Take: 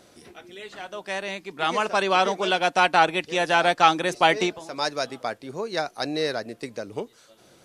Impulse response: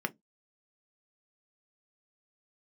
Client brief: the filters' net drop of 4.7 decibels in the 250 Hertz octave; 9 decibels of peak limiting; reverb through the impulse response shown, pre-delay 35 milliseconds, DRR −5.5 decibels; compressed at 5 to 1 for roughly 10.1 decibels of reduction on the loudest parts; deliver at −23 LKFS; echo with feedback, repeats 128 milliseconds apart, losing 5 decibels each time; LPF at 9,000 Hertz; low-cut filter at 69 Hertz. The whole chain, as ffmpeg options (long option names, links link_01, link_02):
-filter_complex "[0:a]highpass=69,lowpass=9000,equalizer=frequency=250:width_type=o:gain=-8,acompressor=threshold=-24dB:ratio=5,alimiter=limit=-21dB:level=0:latency=1,aecho=1:1:128|256|384|512|640|768|896:0.562|0.315|0.176|0.0988|0.0553|0.031|0.0173,asplit=2[link_01][link_02];[1:a]atrim=start_sample=2205,adelay=35[link_03];[link_02][link_03]afir=irnorm=-1:irlink=0,volume=0.5dB[link_04];[link_01][link_04]amix=inputs=2:normalize=0,volume=3.5dB"